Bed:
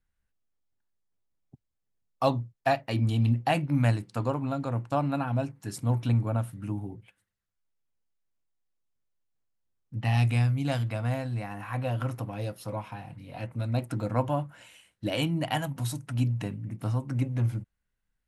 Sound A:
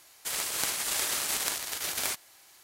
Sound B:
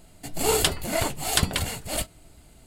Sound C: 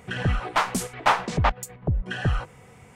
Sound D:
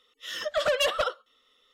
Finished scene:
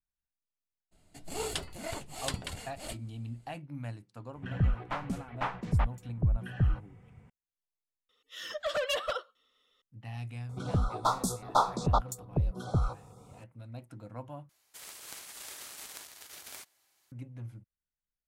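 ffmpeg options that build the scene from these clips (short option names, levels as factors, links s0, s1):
-filter_complex "[3:a]asplit=2[s0][s1];[0:a]volume=0.158[s2];[2:a]lowpass=10000[s3];[s0]bass=f=250:g=12,treble=f=4000:g=-11[s4];[s1]asuperstop=centerf=2200:order=20:qfactor=1.1[s5];[s2]asplit=3[s6][s7][s8];[s6]atrim=end=8.094[s9];[4:a]atrim=end=1.73,asetpts=PTS-STARTPTS,volume=0.473[s10];[s7]atrim=start=9.816:end=14.494[s11];[1:a]atrim=end=2.63,asetpts=PTS-STARTPTS,volume=0.168[s12];[s8]atrim=start=17.116[s13];[s3]atrim=end=2.66,asetpts=PTS-STARTPTS,volume=0.224,afade=t=in:d=0.02,afade=t=out:st=2.64:d=0.02,adelay=910[s14];[s4]atrim=end=2.95,asetpts=PTS-STARTPTS,volume=0.2,afade=t=in:d=0.004:c=hsin,afade=t=out:st=2.946:d=0.004:c=hsin,adelay=4350[s15];[s5]atrim=end=2.95,asetpts=PTS-STARTPTS,volume=0.596,afade=t=in:d=0.004:c=hsin,afade=t=out:st=2.946:d=0.004:c=hsin,adelay=10490[s16];[s9][s10]acrossfade=d=0.004:c1=hsin:c2=hsin[s17];[s17][s11]acrossfade=d=0.004:c1=hsin:c2=hsin[s18];[s18][s12]acrossfade=d=0.004:c1=hsin:c2=hsin[s19];[s19][s13]acrossfade=d=0.004:c1=hsin:c2=hsin[s20];[s20][s14][s15][s16]amix=inputs=4:normalize=0"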